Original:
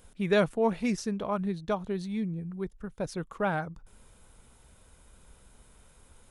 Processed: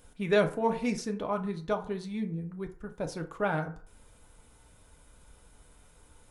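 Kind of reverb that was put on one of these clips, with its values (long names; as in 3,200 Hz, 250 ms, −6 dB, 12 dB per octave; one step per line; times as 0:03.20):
feedback delay network reverb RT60 0.48 s, low-frequency decay 0.7×, high-frequency decay 0.5×, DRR 4.5 dB
level −1.5 dB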